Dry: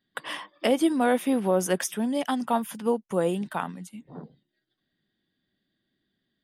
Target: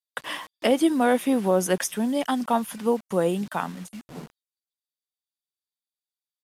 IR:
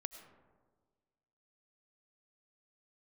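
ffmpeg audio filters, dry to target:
-filter_complex "[0:a]acrossover=split=5900[s0][s1];[s0]acrusher=bits=7:mix=0:aa=0.000001[s2];[s2][s1]amix=inputs=2:normalize=0,aresample=32000,aresample=44100,volume=1.26"

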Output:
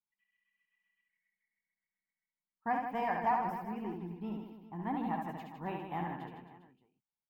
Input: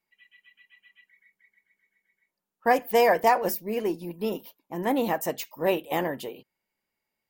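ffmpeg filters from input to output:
-filter_complex "[0:a]agate=range=0.316:threshold=0.00224:ratio=16:detection=peak,firequalizer=gain_entry='entry(180,0);entry(540,-22);entry(780,-2);entry(1800,-9);entry(5800,-29)':delay=0.05:min_phase=1,asplit=2[s0][s1];[s1]aecho=0:1:70|157.5|266.9|403.6|574.5:0.631|0.398|0.251|0.158|0.1[s2];[s0][s2]amix=inputs=2:normalize=0,volume=0.531"

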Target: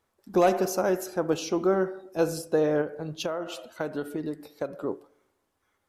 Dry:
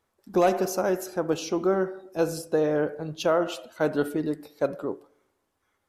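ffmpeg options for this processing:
-filter_complex "[0:a]asettb=1/sr,asplit=3[s0][s1][s2];[s0]atrim=end=2.814[s3];[s1]atrim=start=2.81:end=4.83,asetpts=PTS-STARTPTS,afade=t=in:d=0.004:c=qsin,afade=t=out:st=2.016:d=0.004:c=qsin,acompressor=threshold=0.0398:ratio=6[s4];[s2]atrim=start=4.826[s5];[s3][s4]acrossfade=d=0.004:c1=hsin:c2=qsin[s6];[s6][s5]acrossfade=d=0.004:c1=qsin:c2=hsin"

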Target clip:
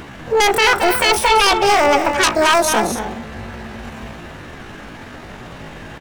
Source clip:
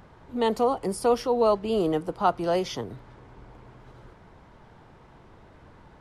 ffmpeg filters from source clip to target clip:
-af "aeval=exprs='0.335*sin(PI/2*4.47*val(0)/0.335)':c=same,asetrate=80880,aresample=44100,atempo=0.545254,aecho=1:1:218.7|262.4:0.355|0.251"

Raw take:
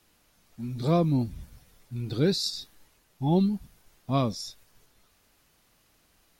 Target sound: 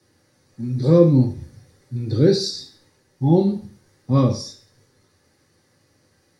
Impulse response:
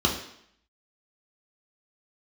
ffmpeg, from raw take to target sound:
-filter_complex "[0:a]asuperstop=centerf=670:order=4:qfactor=7.3[s0];[1:a]atrim=start_sample=2205,asetrate=66150,aresample=44100[s1];[s0][s1]afir=irnorm=-1:irlink=0,volume=0.422"

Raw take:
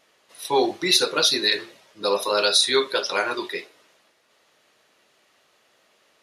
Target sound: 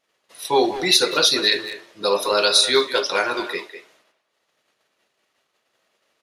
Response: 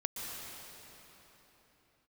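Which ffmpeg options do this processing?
-filter_complex "[0:a]agate=range=0.178:threshold=0.001:ratio=16:detection=peak,bandreject=f=301.6:t=h:w=4,bandreject=f=603.2:t=h:w=4,bandreject=f=904.8:t=h:w=4,bandreject=f=1206.4:t=h:w=4,bandreject=f=1508:t=h:w=4,bandreject=f=1809.6:t=h:w=4,bandreject=f=2111.2:t=h:w=4,bandreject=f=2412.8:t=h:w=4,bandreject=f=2714.4:t=h:w=4,bandreject=f=3016:t=h:w=4,bandreject=f=3317.6:t=h:w=4,bandreject=f=3619.2:t=h:w=4,bandreject=f=3920.8:t=h:w=4,bandreject=f=4222.4:t=h:w=4,bandreject=f=4524:t=h:w=4,bandreject=f=4825.6:t=h:w=4,bandreject=f=5127.2:t=h:w=4,bandreject=f=5428.8:t=h:w=4,bandreject=f=5730.4:t=h:w=4,bandreject=f=6032:t=h:w=4,bandreject=f=6333.6:t=h:w=4,bandreject=f=6635.2:t=h:w=4,bandreject=f=6936.8:t=h:w=4,bandreject=f=7238.4:t=h:w=4,bandreject=f=7540:t=h:w=4,bandreject=f=7841.6:t=h:w=4,bandreject=f=8143.2:t=h:w=4,bandreject=f=8444.8:t=h:w=4,bandreject=f=8746.4:t=h:w=4,bandreject=f=9048:t=h:w=4,bandreject=f=9349.6:t=h:w=4,bandreject=f=9651.2:t=h:w=4,asplit=2[s0][s1];[s1]adelay=200,highpass=300,lowpass=3400,asoftclip=type=hard:threshold=0.141,volume=0.316[s2];[s0][s2]amix=inputs=2:normalize=0,volume=1.33"

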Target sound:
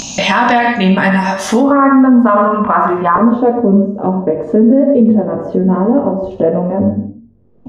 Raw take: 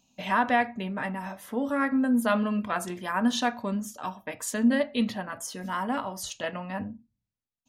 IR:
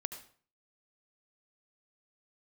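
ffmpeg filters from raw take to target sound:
-filter_complex "[0:a]asetnsamples=n=441:p=0,asendcmd='1.61 lowpass f 1100;3.16 lowpass f 440',lowpass=f=6000:t=q:w=2.6[s0];[1:a]atrim=start_sample=2205,afade=t=out:st=0.34:d=0.01,atrim=end_sample=15435[s1];[s0][s1]afir=irnorm=-1:irlink=0,acompressor=mode=upward:threshold=0.0447:ratio=2.5,flanger=delay=18:depth=3.6:speed=0.61,alimiter=level_in=15:limit=0.891:release=50:level=0:latency=1,volume=0.891"

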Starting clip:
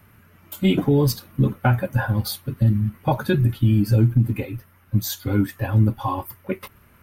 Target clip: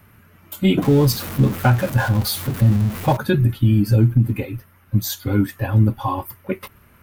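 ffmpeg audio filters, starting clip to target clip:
-filter_complex "[0:a]asettb=1/sr,asplit=3[s0][s1][s2];[s0]atrim=end=0.824[s3];[s1]atrim=start=0.82:end=3.17,asetpts=PTS-STARTPTS,afade=t=in:d=0.004:c=qsin,afade=t=out:st=2.346:d=0.004:c=qsin,aeval=exprs='val(0)+0.5*0.0447*sgn(val(0))':c=same[s4];[s2]atrim=start=3.166[s5];[s3][s4]acrossfade=d=0.004:c1=hsin:c2=qsin[s6];[s6][s5]acrossfade=d=0.004:c1=qsin:c2=hsin,volume=1.26"

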